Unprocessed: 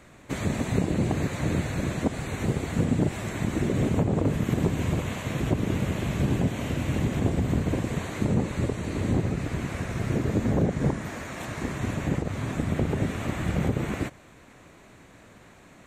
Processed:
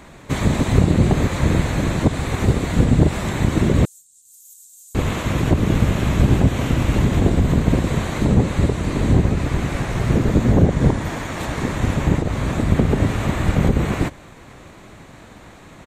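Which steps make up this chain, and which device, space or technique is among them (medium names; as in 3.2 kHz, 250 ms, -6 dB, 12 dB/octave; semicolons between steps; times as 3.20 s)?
octave pedal (harmony voices -12 st -1 dB); 3.85–4.95 s: inverse Chebyshev high-pass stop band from 1.8 kHz, stop band 70 dB; trim +7 dB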